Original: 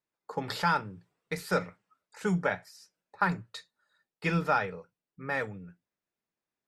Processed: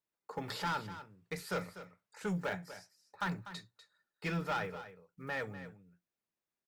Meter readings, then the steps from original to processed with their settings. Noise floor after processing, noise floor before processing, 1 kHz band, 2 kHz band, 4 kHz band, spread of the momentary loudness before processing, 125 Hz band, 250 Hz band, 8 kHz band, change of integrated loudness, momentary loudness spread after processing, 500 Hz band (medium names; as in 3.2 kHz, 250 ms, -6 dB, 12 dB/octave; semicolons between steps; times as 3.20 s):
under -85 dBFS, under -85 dBFS, -8.5 dB, -7.5 dB, -4.0 dB, 18 LU, -7.0 dB, -7.0 dB, -4.0 dB, -8.5 dB, 15 LU, -7.5 dB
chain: block-companded coder 7-bit; saturation -25 dBFS, distortion -11 dB; delay 246 ms -13 dB; trim -4.5 dB